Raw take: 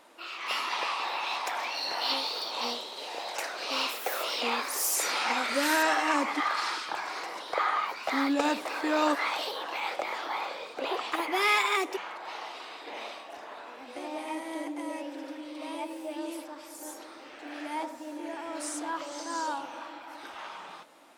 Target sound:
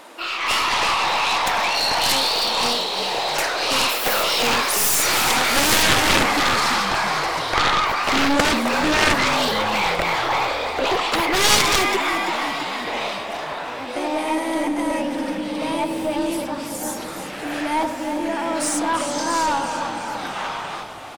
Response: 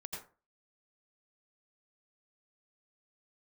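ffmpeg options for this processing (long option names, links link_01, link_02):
-filter_complex "[0:a]asplit=8[link_01][link_02][link_03][link_04][link_05][link_06][link_07][link_08];[link_02]adelay=335,afreqshift=-45,volume=-10dB[link_09];[link_03]adelay=670,afreqshift=-90,volume=-14.9dB[link_10];[link_04]adelay=1005,afreqshift=-135,volume=-19.8dB[link_11];[link_05]adelay=1340,afreqshift=-180,volume=-24.6dB[link_12];[link_06]adelay=1675,afreqshift=-225,volume=-29.5dB[link_13];[link_07]adelay=2010,afreqshift=-270,volume=-34.4dB[link_14];[link_08]adelay=2345,afreqshift=-315,volume=-39.3dB[link_15];[link_01][link_09][link_10][link_11][link_12][link_13][link_14][link_15]amix=inputs=8:normalize=0,aeval=exprs='0.282*(cos(1*acos(clip(val(0)/0.282,-1,1)))-cos(1*PI/2))+0.0355*(cos(6*acos(clip(val(0)/0.282,-1,1)))-cos(6*PI/2))+0.126*(cos(7*acos(clip(val(0)/0.282,-1,1)))-cos(7*PI/2))':channel_layout=same,volume=7.5dB"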